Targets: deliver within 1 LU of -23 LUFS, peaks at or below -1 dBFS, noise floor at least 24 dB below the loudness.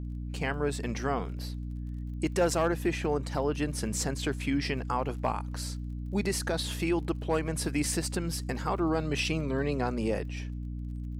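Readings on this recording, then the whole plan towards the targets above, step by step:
ticks 29/s; hum 60 Hz; harmonics up to 300 Hz; hum level -34 dBFS; loudness -31.5 LUFS; peak -17.5 dBFS; loudness target -23.0 LUFS
-> de-click; notches 60/120/180/240/300 Hz; gain +8.5 dB

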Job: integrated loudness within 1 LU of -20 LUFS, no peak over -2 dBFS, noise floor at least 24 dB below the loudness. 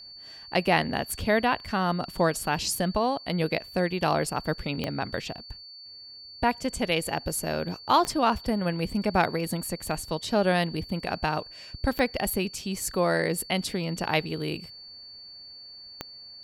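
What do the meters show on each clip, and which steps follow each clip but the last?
clicks 4; steady tone 4500 Hz; tone level -43 dBFS; loudness -27.5 LUFS; peak -7.5 dBFS; loudness target -20.0 LUFS
-> de-click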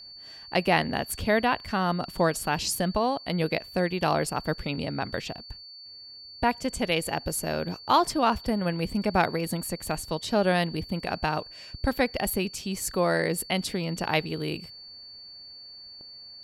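clicks 0; steady tone 4500 Hz; tone level -43 dBFS
-> notch 4500 Hz, Q 30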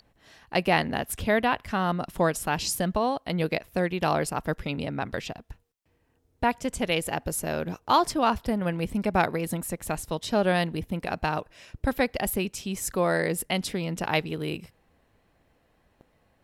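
steady tone none; loudness -27.5 LUFS; peak -7.5 dBFS; loudness target -20.0 LUFS
-> gain +7.5 dB; limiter -2 dBFS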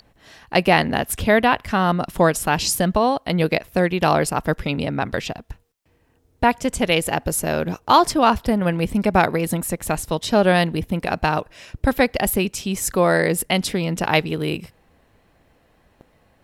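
loudness -20.0 LUFS; peak -2.0 dBFS; noise floor -60 dBFS

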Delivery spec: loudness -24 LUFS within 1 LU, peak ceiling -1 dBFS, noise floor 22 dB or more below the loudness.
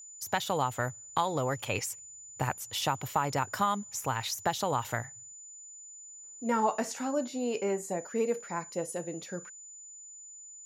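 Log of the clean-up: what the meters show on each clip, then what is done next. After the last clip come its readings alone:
steady tone 7000 Hz; tone level -46 dBFS; loudness -32.5 LUFS; peak -15.0 dBFS; loudness target -24.0 LUFS
-> notch 7000 Hz, Q 30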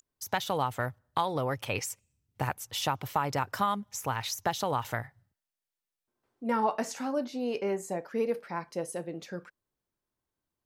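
steady tone none; loudness -32.5 LUFS; peak -15.0 dBFS; loudness target -24.0 LUFS
-> gain +8.5 dB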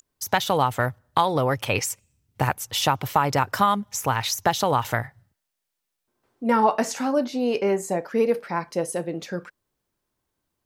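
loudness -24.0 LUFS; peak -6.5 dBFS; noise floor -81 dBFS

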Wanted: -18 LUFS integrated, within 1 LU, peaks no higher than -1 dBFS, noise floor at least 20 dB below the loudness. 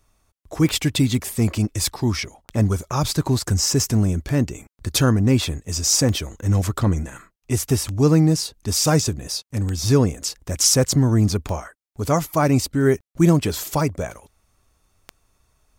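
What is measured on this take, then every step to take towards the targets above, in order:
clicks 9; loudness -20.5 LUFS; peak -4.5 dBFS; loudness target -18.0 LUFS
-> de-click; gain +2.5 dB

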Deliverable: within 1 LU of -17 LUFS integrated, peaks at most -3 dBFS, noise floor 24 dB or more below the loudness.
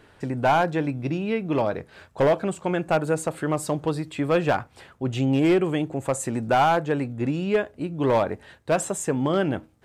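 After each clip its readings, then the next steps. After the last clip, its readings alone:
clipped 1.1%; flat tops at -14.0 dBFS; loudness -24.5 LUFS; peak -14.0 dBFS; loudness target -17.0 LUFS
-> clip repair -14 dBFS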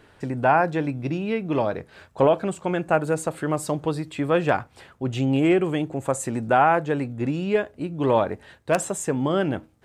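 clipped 0.0%; loudness -24.0 LUFS; peak -5.0 dBFS; loudness target -17.0 LUFS
-> gain +7 dB; limiter -3 dBFS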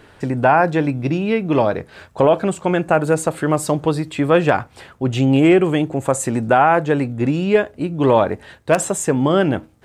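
loudness -17.5 LUFS; peak -3.0 dBFS; noise floor -49 dBFS

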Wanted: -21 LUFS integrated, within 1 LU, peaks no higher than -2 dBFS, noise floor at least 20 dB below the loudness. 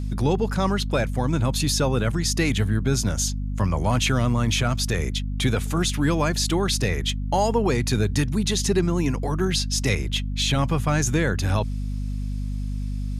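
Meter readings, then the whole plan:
hum 50 Hz; harmonics up to 250 Hz; hum level -25 dBFS; loudness -23.5 LUFS; peak -9.0 dBFS; loudness target -21.0 LUFS
-> de-hum 50 Hz, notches 5; gain +2.5 dB

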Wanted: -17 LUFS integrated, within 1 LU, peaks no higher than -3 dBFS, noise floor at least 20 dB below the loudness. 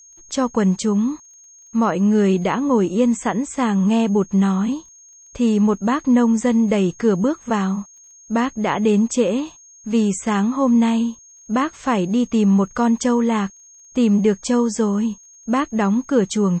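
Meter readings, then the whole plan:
ticks 30/s; steady tone 6500 Hz; tone level -44 dBFS; loudness -19.0 LUFS; peak -5.5 dBFS; loudness target -17.0 LUFS
-> de-click; notch 6500 Hz, Q 30; gain +2 dB

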